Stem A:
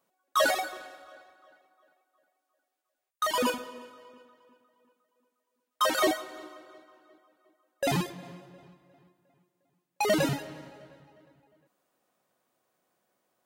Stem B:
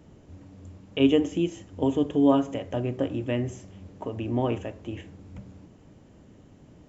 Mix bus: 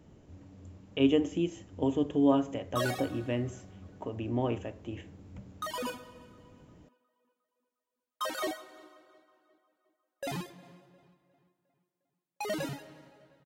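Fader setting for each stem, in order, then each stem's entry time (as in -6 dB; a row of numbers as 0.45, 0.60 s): -9.0, -4.5 dB; 2.40, 0.00 s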